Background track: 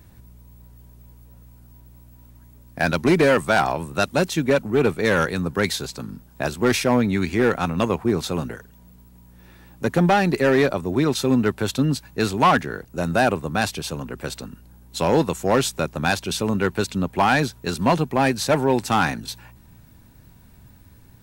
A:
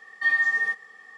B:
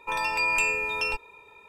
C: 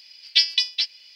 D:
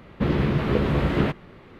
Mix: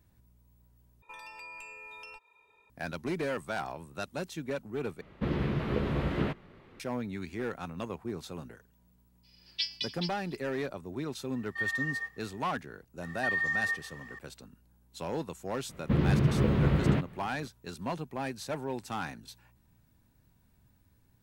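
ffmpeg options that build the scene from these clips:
ffmpeg -i bed.wav -i cue0.wav -i cue1.wav -i cue2.wav -i cue3.wav -filter_complex "[4:a]asplit=2[link_01][link_02];[1:a]asplit=2[link_03][link_04];[0:a]volume=-16.5dB[link_05];[2:a]acrossover=split=640|1600[link_06][link_07][link_08];[link_06]acompressor=threshold=-49dB:ratio=4[link_09];[link_07]acompressor=threshold=-39dB:ratio=4[link_10];[link_08]acompressor=threshold=-36dB:ratio=4[link_11];[link_09][link_10][link_11]amix=inputs=3:normalize=0[link_12];[3:a]aecho=1:1:293:0.0944[link_13];[link_04]alimiter=level_in=0.5dB:limit=-24dB:level=0:latency=1:release=71,volume=-0.5dB[link_14];[link_02]equalizer=frequency=120:width=0.85:gain=8[link_15];[link_05]asplit=3[link_16][link_17][link_18];[link_16]atrim=end=1.024[link_19];[link_12]atrim=end=1.68,asetpts=PTS-STARTPTS,volume=-13dB[link_20];[link_17]atrim=start=2.696:end=5.014[link_21];[link_01]atrim=end=1.79,asetpts=PTS-STARTPTS,volume=-8.5dB[link_22];[link_18]atrim=start=6.796[link_23];[link_13]atrim=end=1.15,asetpts=PTS-STARTPTS,volume=-15dB,afade=type=in:duration=0.02,afade=type=out:start_time=1.13:duration=0.02,adelay=9230[link_24];[link_03]atrim=end=1.17,asetpts=PTS-STARTPTS,volume=-11dB,afade=type=in:duration=0.004:curve=hsin,afade=type=out:start_time=1.166:duration=0.004:curve=hsin,adelay=11340[link_25];[link_14]atrim=end=1.17,asetpts=PTS-STARTPTS,volume=-0.5dB,afade=type=in:duration=0.004:curve=hsin,afade=type=out:start_time=1.166:duration=0.004:curve=hsin,adelay=13020[link_26];[link_15]atrim=end=1.79,asetpts=PTS-STARTPTS,volume=-8dB,afade=type=in:duration=0.004:curve=hsin,afade=type=out:start_time=1.786:duration=0.004:curve=hsin,adelay=15690[link_27];[link_19][link_20]acrossfade=duration=0.004:curve1=hsin:curve2=hsin[link_28];[link_28][link_21]acrossfade=duration=0.004:curve1=hsin:curve2=hsin[link_29];[link_29][link_22]acrossfade=duration=0.004:curve1=hsin:curve2=hsin[link_30];[link_30][link_23]acrossfade=duration=0.004:curve1=hsin:curve2=hsin[link_31];[link_31][link_24][link_25][link_26][link_27]amix=inputs=5:normalize=0" out.wav

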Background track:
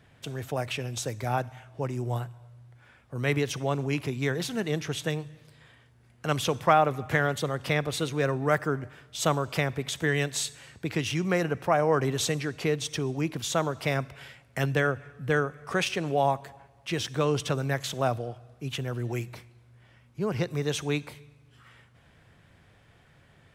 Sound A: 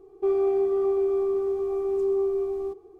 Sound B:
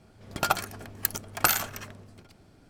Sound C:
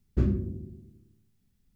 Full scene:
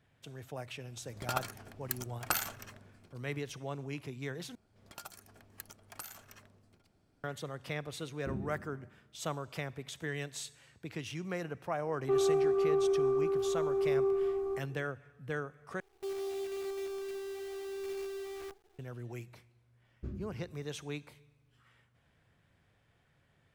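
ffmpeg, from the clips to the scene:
ffmpeg -i bed.wav -i cue0.wav -i cue1.wav -i cue2.wav -filter_complex "[2:a]asplit=2[link_01][link_02];[3:a]asplit=2[link_03][link_04];[1:a]asplit=2[link_05][link_06];[0:a]volume=-12dB[link_07];[link_02]acrossover=split=560|5200[link_08][link_09][link_10];[link_08]acompressor=threshold=-44dB:ratio=4[link_11];[link_09]acompressor=threshold=-35dB:ratio=4[link_12];[link_10]acompressor=threshold=-31dB:ratio=4[link_13];[link_11][link_12][link_13]amix=inputs=3:normalize=0[link_14];[link_03]highpass=110,lowpass=2400[link_15];[link_05]equalizer=frequency=1400:width_type=o:width=0.77:gain=10.5[link_16];[link_06]acrusher=bits=6:dc=4:mix=0:aa=0.000001[link_17];[link_07]asplit=3[link_18][link_19][link_20];[link_18]atrim=end=4.554[link_21];[link_14]atrim=end=2.69,asetpts=PTS-STARTPTS,volume=-14.5dB[link_22];[link_19]atrim=start=7.236:end=15.804[link_23];[link_17]atrim=end=2.99,asetpts=PTS-STARTPTS,volume=-15dB[link_24];[link_20]atrim=start=18.786[link_25];[link_01]atrim=end=2.69,asetpts=PTS-STARTPTS,volume=-9.5dB,afade=type=in:duration=0.004:curve=hsin,afade=type=out:start_time=2.686:duration=0.004:curve=hsin,adelay=860[link_26];[link_15]atrim=end=1.75,asetpts=PTS-STARTPTS,volume=-11.5dB,afade=type=in:duration=0.004:curve=hsin,afade=type=out:start_time=1.746:duration=0.004:curve=hsin,adelay=8090[link_27];[link_16]atrim=end=2.99,asetpts=PTS-STARTPTS,volume=-5.5dB,afade=type=in:duration=0.004:curve=hsin,afade=type=out:start_time=2.986:duration=0.004:curve=hsin,adelay=523026S[link_28];[link_04]atrim=end=1.75,asetpts=PTS-STARTPTS,volume=-17dB,afade=type=in:duration=0.004:curve=hsin,afade=type=out:start_time=1.746:duration=0.004:curve=hsin,adelay=19860[link_29];[link_21][link_22]acrossfade=duration=0.004:curve1=hsin:curve2=hsin[link_30];[link_30][link_23]acrossfade=duration=0.004:curve1=hsin:curve2=hsin[link_31];[link_31][link_24]acrossfade=duration=0.004:curve1=hsin:curve2=hsin[link_32];[link_32][link_25]acrossfade=duration=0.004:curve1=hsin:curve2=hsin[link_33];[link_33][link_26][link_27][link_28][link_29]amix=inputs=5:normalize=0" out.wav

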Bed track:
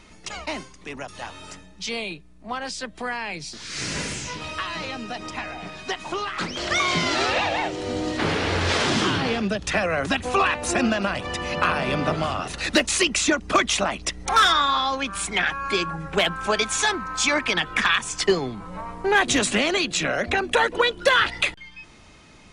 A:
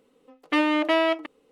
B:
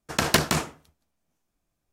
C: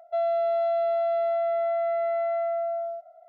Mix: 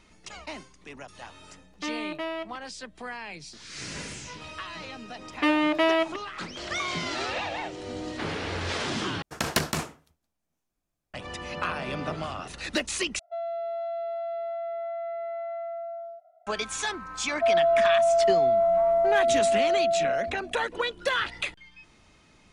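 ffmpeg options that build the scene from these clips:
ffmpeg -i bed.wav -i cue0.wav -i cue1.wav -i cue2.wav -filter_complex "[1:a]asplit=2[link_01][link_02];[3:a]asplit=2[link_03][link_04];[0:a]volume=-8.5dB[link_05];[link_04]equalizer=frequency=700:width=1.5:gain=13.5[link_06];[link_05]asplit=3[link_07][link_08][link_09];[link_07]atrim=end=9.224[link_10];[2:a]atrim=end=1.92,asetpts=PTS-STARTPTS,volume=-5dB[link_11];[link_08]atrim=start=11.136:end=13.194[link_12];[link_03]atrim=end=3.28,asetpts=PTS-STARTPTS,volume=-7.5dB[link_13];[link_09]atrim=start=16.466[link_14];[link_01]atrim=end=1.51,asetpts=PTS-STARTPTS,volume=-11.5dB,afade=type=in:duration=0.004:curve=hsin,afade=type=out:start_time=1.506:duration=0.004:curve=hsin,adelay=1300[link_15];[link_02]atrim=end=1.51,asetpts=PTS-STARTPTS,volume=-1dB,afade=type=in:duration=0.004:curve=hsin,afade=type=out:start_time=1.506:duration=0.004:curve=hsin,adelay=4900[link_16];[link_06]atrim=end=3.28,asetpts=PTS-STARTPTS,volume=-9.5dB,afade=type=in:duration=0.004:curve=hsin,afade=type=out:start_time=3.276:duration=0.004:curve=hsin,adelay=17290[link_17];[link_10][link_11]acrossfade=duration=0.004:curve1=hsin:curve2=hsin[link_18];[link_18][link_12]acrossfade=duration=0.004:curve1=hsin:curve2=hsin[link_19];[link_19][link_13]acrossfade=duration=0.004:curve1=hsin:curve2=hsin[link_20];[link_20][link_14]acrossfade=duration=0.004:curve1=hsin:curve2=hsin[link_21];[link_21][link_15][link_16][link_17]amix=inputs=4:normalize=0" out.wav

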